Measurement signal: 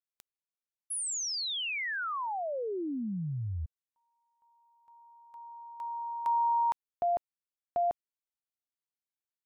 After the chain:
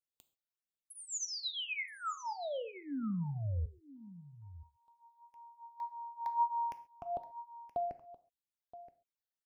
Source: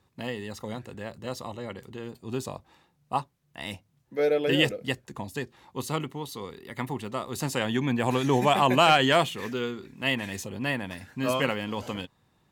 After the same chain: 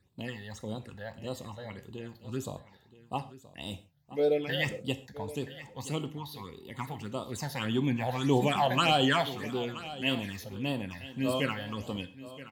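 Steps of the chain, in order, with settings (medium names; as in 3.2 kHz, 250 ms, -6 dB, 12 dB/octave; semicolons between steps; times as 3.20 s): phase shifter stages 8, 1.7 Hz, lowest notch 310–2000 Hz; on a send: delay 974 ms -16 dB; on the sum: gated-style reverb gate 160 ms falling, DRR 10 dB; trim -2 dB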